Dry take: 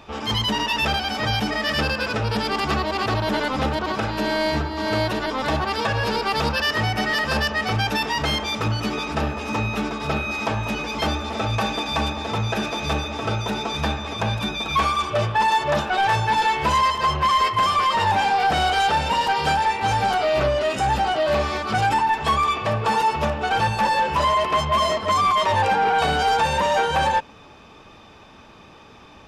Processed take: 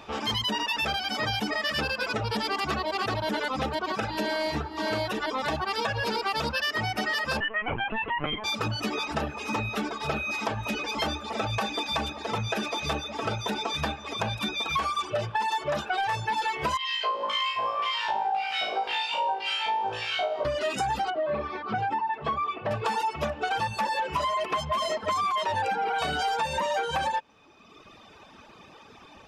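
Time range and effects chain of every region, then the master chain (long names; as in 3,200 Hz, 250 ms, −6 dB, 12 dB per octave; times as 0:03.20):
0:07.40–0:08.44: Butterworth low-pass 3,100 Hz 72 dB per octave + low shelf with overshoot 110 Hz −10.5 dB, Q 3 + linear-prediction vocoder at 8 kHz pitch kept
0:16.77–0:20.45: high-shelf EQ 8,300 Hz +3.5 dB + auto-filter band-pass square 1.9 Hz 610–2,800 Hz + flutter between parallel walls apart 3.1 metres, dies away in 1.3 s
0:21.10–0:22.71: high-pass filter 90 Hz + head-to-tape spacing loss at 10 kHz 34 dB
whole clip: reverb reduction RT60 1.3 s; low-shelf EQ 140 Hz −8 dB; downward compressor, threshold −25 dBFS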